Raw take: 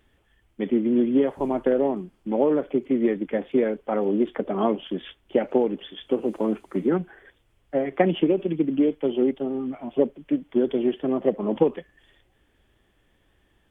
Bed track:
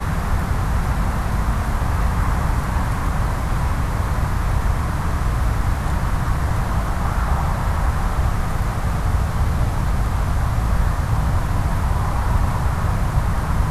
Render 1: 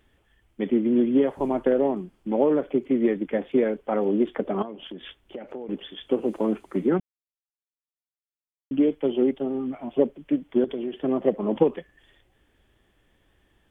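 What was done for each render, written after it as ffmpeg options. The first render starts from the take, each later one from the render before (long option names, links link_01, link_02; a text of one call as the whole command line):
ffmpeg -i in.wav -filter_complex "[0:a]asettb=1/sr,asplit=3[link_01][link_02][link_03];[link_01]atrim=end=4.624[link_04];[link_02]atrim=start=4.62:end=5.69,asetpts=PTS-STARTPTS,afade=type=in:duration=0.004:curve=qsin,afade=type=out:start_time=1.066:duration=0.004:curve=qsin,acompressor=threshold=-35dB:ratio=4:attack=3.2:release=140:knee=1:detection=peak[link_05];[link_03]atrim=start=5.686[link_06];[link_04][link_05]acrossfade=duration=0.004:curve1=hsin:curve2=qsin[link_07];[link_07][link_06]acrossfade=duration=0.004:curve1=qsin:curve2=hsin,asettb=1/sr,asplit=3[link_08][link_09][link_10];[link_08]atrim=end=10.644[link_11];[link_09]atrim=start=10.64:end=11.04,asetpts=PTS-STARTPTS,afade=type=in:duration=0.004:curve=qsin,afade=type=out:start_time=0.396:duration=0.004:curve=qsin,acompressor=threshold=-26dB:ratio=6:attack=3.2:release=140:knee=1:detection=peak[link_12];[link_10]atrim=start=11.036[link_13];[link_11][link_12]acrossfade=duration=0.004:curve1=hsin:curve2=qsin[link_14];[link_14][link_13]acrossfade=duration=0.004:curve1=qsin:curve2=hsin,asplit=3[link_15][link_16][link_17];[link_15]atrim=end=7,asetpts=PTS-STARTPTS,afade=type=out:start_time=6.996:duration=0.004:curve=hsin[link_18];[link_16]atrim=start=7:end=8.71,asetpts=PTS-STARTPTS,volume=0[link_19];[link_17]atrim=start=8.71,asetpts=PTS-STARTPTS,afade=type=in:duration=0.004:curve=hsin[link_20];[link_18][link_19][link_20]concat=n=3:v=0:a=1" out.wav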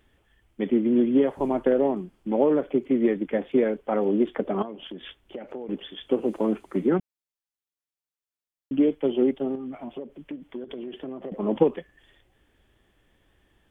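ffmpeg -i in.wav -filter_complex "[0:a]asettb=1/sr,asplit=3[link_01][link_02][link_03];[link_01]atrim=end=9.554[link_04];[link_02]atrim=start=9.55:end=11.32,asetpts=PTS-STARTPTS,afade=type=in:duration=0.004:curve=qsin,afade=type=out:start_time=1.766:duration=0.004:curve=qsin,acompressor=threshold=-31dB:ratio=12:attack=3.2:release=140:knee=1:detection=peak[link_05];[link_03]atrim=start=11.316[link_06];[link_04][link_05]acrossfade=duration=0.004:curve1=hsin:curve2=qsin[link_07];[link_07][link_06]acrossfade=duration=0.004:curve1=qsin:curve2=hsin" out.wav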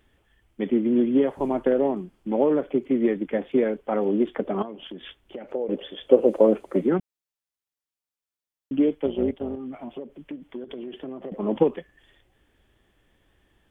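ffmpeg -i in.wav -filter_complex "[0:a]asettb=1/sr,asplit=3[link_01][link_02][link_03];[link_01]atrim=end=5.544[link_04];[link_02]atrim=start=5.54:end=6.81,asetpts=PTS-STARTPTS,afade=type=in:duration=0.004:curve=qsin,afade=type=out:start_time=1.266:duration=0.004:curve=qsin,equalizer=frequency=540:width_type=o:width=0.69:gain=14[link_05];[link_03]atrim=start=6.806[link_06];[link_04][link_05]acrossfade=duration=0.004:curve1=hsin:curve2=qsin[link_07];[link_07][link_06]acrossfade=duration=0.004:curve1=qsin:curve2=hsin,asettb=1/sr,asplit=3[link_08][link_09][link_10];[link_08]atrim=end=9.064[link_11];[link_09]atrim=start=9.06:end=9.57,asetpts=PTS-STARTPTS,afade=type=in:duration=0.004:curve=qsin,afade=type=out:start_time=0.506:duration=0.004:curve=qsin,tremolo=f=180:d=0.621[link_12];[link_10]atrim=start=9.566[link_13];[link_11][link_12]acrossfade=duration=0.004:curve1=hsin:curve2=qsin[link_14];[link_14][link_13]acrossfade=duration=0.004:curve1=qsin:curve2=hsin" out.wav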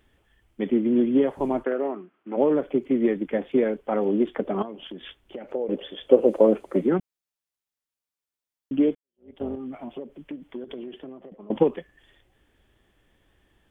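ffmpeg -i in.wav -filter_complex "[0:a]asplit=3[link_01][link_02][link_03];[link_01]afade=type=out:start_time=1.63:duration=0.02[link_04];[link_02]highpass=380,equalizer=frequency=520:width_type=q:width=4:gain=-5,equalizer=frequency=850:width_type=q:width=4:gain=-5,equalizer=frequency=1300:width_type=q:width=4:gain=7,lowpass=frequency=2700:width=0.5412,lowpass=frequency=2700:width=1.3066,afade=type=in:start_time=1.63:duration=0.02,afade=type=out:start_time=2.36:duration=0.02[link_05];[link_03]afade=type=in:start_time=2.36:duration=0.02[link_06];[link_04][link_05][link_06]amix=inputs=3:normalize=0,asplit=3[link_07][link_08][link_09];[link_07]atrim=end=8.95,asetpts=PTS-STARTPTS,afade=type=out:start_time=8.946:duration=0.004:curve=hsin[link_10];[link_08]atrim=start=8.95:end=11.5,asetpts=PTS-STARTPTS,afade=type=in:duration=0.43:curve=exp,afade=type=out:start_time=1.8:duration=0.75:silence=0.0668344[link_11];[link_09]atrim=start=11.5,asetpts=PTS-STARTPTS,afade=type=in:duration=0.004:curve=hsin:silence=0.0668344[link_12];[link_10][link_11][link_12]concat=n=3:v=0:a=1" out.wav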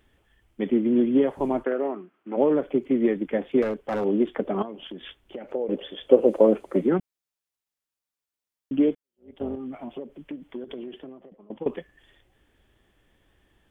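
ffmpeg -i in.wav -filter_complex "[0:a]asettb=1/sr,asplit=3[link_01][link_02][link_03];[link_01]atrim=end=3.624[link_04];[link_02]atrim=start=3.62:end=4.04,asetpts=PTS-STARTPTS,afade=type=in:duration=0.004:curve=qsin,afade=type=out:start_time=0.416:duration=0.004:curve=qsin,volume=22dB,asoftclip=hard,volume=-22dB[link_05];[link_03]atrim=start=4.036[link_06];[link_04][link_05]acrossfade=duration=0.004:curve1=hsin:curve2=qsin[link_07];[link_07][link_06]acrossfade=duration=0.004:curve1=qsin:curve2=hsin,asplit=2[link_08][link_09];[link_08]atrim=end=11.66,asetpts=PTS-STARTPTS,afade=type=out:start_time=10.94:duration=0.72:silence=0.112202[link_10];[link_09]atrim=start=11.66,asetpts=PTS-STARTPTS,afade=type=in:duration=0.004:curve=hsin:silence=0.112202[link_11];[link_10][link_11]concat=n=2:v=0:a=1" out.wav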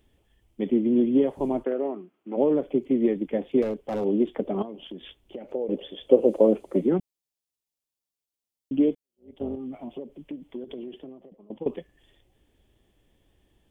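ffmpeg -i in.wav -af "equalizer=frequency=1500:width=1.1:gain=-10.5" out.wav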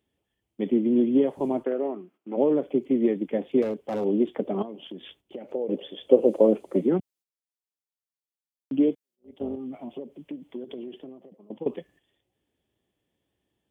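ffmpeg -i in.wav -af "agate=range=-10dB:threshold=-55dB:ratio=16:detection=peak,highpass=110" out.wav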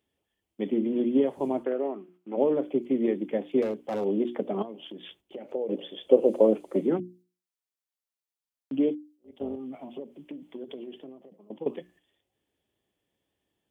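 ffmpeg -i in.wav -af "lowshelf=frequency=330:gain=-4,bandreject=frequency=60:width_type=h:width=6,bandreject=frequency=120:width_type=h:width=6,bandreject=frequency=180:width_type=h:width=6,bandreject=frequency=240:width_type=h:width=6,bandreject=frequency=300:width_type=h:width=6,bandreject=frequency=360:width_type=h:width=6" out.wav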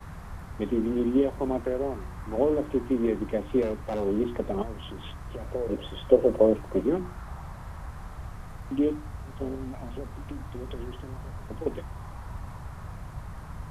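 ffmpeg -i in.wav -i bed.wav -filter_complex "[1:a]volume=-20dB[link_01];[0:a][link_01]amix=inputs=2:normalize=0" out.wav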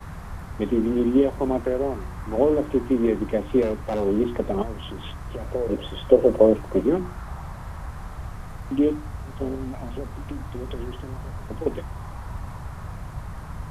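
ffmpeg -i in.wav -af "volume=4.5dB,alimiter=limit=-2dB:level=0:latency=1" out.wav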